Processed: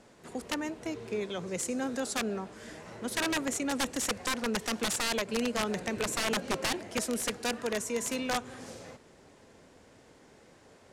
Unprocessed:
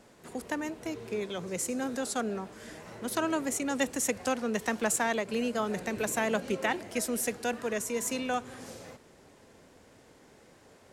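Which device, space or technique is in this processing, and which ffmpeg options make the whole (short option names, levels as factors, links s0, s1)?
overflowing digital effects unit: -af "aeval=exprs='(mod(13.3*val(0)+1,2)-1)/13.3':c=same,lowpass=10000"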